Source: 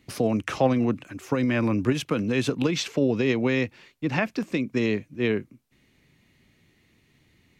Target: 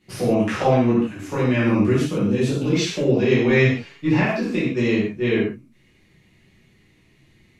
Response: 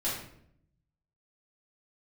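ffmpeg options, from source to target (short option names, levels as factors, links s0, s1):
-filter_complex "[0:a]asettb=1/sr,asplit=3[s0][s1][s2];[s0]atrim=end=1.924[s3];[s1]atrim=start=1.92:end=2.73,asetpts=PTS-STARTPTS,afade=t=in:d=0.004:c=qsin,afade=t=out:st=0.806:d=0.004:c=qsin,equalizer=f=1900:w=0.53:g=-8.5[s4];[s2]atrim=start=2.726[s5];[s3][s4]acrossfade=d=0.004:c1=hsin:c2=qsin[s6];[s6][s5]acrossfade=d=0.004:c1=qsin:c2=hsin,asettb=1/sr,asplit=3[s7][s8][s9];[s7]atrim=end=3.484[s10];[s8]atrim=start=3.48:end=4.12,asetpts=PTS-STARTPTS,afade=t=in:d=0.004:c=qsin,afade=t=out:st=0.636:d=0.004:c=qsin,aecho=1:1:7.1:0.99,atrim=end_sample=28224[s11];[s9]atrim=start=4.116[s12];[s10][s11]acrossfade=d=0.004:c1=hsin:c2=qsin[s13];[s13][s12]acrossfade=d=0.004:c1=qsin:c2=hsin[s14];[1:a]atrim=start_sample=2205,atrim=end_sample=4410,asetrate=25578,aresample=44100[s15];[s14][s15]afir=irnorm=-1:irlink=0,volume=0.531"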